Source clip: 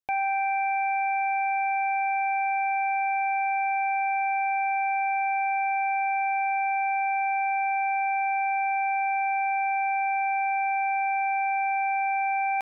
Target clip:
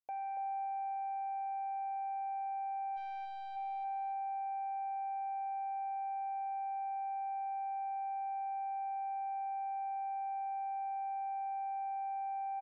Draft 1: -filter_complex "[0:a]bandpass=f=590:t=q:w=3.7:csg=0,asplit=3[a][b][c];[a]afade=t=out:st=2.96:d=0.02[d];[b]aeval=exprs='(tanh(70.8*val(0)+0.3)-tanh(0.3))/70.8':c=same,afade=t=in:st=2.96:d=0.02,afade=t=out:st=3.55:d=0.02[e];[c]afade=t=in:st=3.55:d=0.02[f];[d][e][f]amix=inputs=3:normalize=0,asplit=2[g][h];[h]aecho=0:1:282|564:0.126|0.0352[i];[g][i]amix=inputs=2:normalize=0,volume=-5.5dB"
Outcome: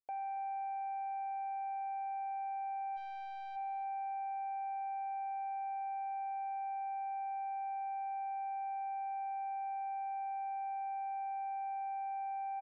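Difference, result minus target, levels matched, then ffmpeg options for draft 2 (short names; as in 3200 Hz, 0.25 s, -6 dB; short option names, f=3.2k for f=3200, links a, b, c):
echo-to-direct -11.5 dB
-filter_complex "[0:a]bandpass=f=590:t=q:w=3.7:csg=0,asplit=3[a][b][c];[a]afade=t=out:st=2.96:d=0.02[d];[b]aeval=exprs='(tanh(70.8*val(0)+0.3)-tanh(0.3))/70.8':c=same,afade=t=in:st=2.96:d=0.02,afade=t=out:st=3.55:d=0.02[e];[c]afade=t=in:st=3.55:d=0.02[f];[d][e][f]amix=inputs=3:normalize=0,asplit=2[g][h];[h]aecho=0:1:282|564|846|1128:0.473|0.132|0.0371|0.0104[i];[g][i]amix=inputs=2:normalize=0,volume=-5.5dB"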